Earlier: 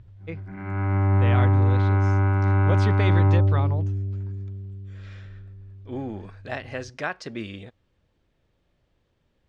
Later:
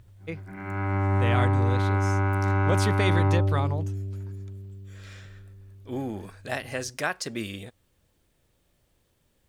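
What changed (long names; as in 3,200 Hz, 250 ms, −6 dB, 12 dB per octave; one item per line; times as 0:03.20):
background: add bass and treble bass −5 dB, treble −1 dB
master: remove high-frequency loss of the air 160 metres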